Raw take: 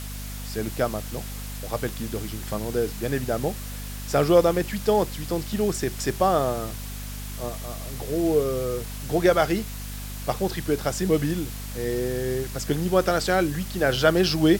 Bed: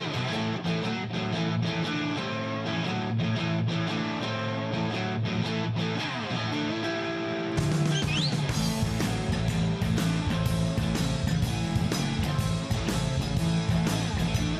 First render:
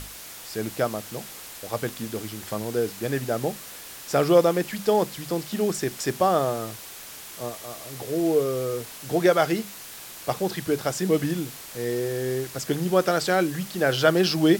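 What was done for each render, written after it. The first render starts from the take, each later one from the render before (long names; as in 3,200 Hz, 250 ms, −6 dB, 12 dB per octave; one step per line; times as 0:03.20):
mains-hum notches 50/100/150/200/250 Hz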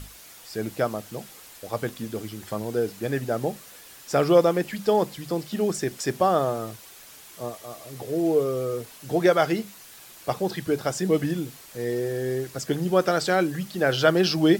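broadband denoise 7 dB, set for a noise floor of −41 dBFS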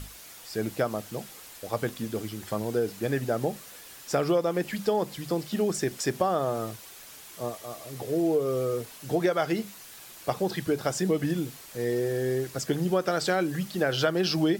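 downward compressor 6 to 1, threshold −21 dBFS, peak gain reduction 9.5 dB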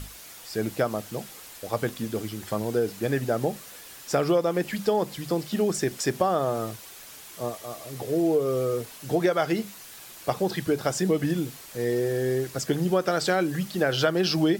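level +2 dB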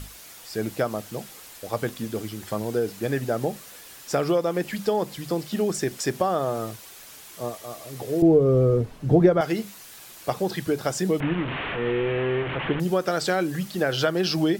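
0:08.22–0:09.41: spectral tilt −4.5 dB per octave
0:11.20–0:12.80: linear delta modulator 16 kbit/s, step −23 dBFS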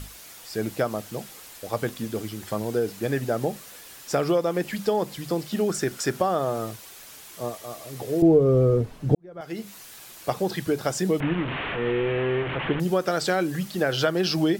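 0:05.68–0:06.20: parametric band 1,400 Hz +11 dB 0.24 octaves
0:09.15–0:09.75: fade in quadratic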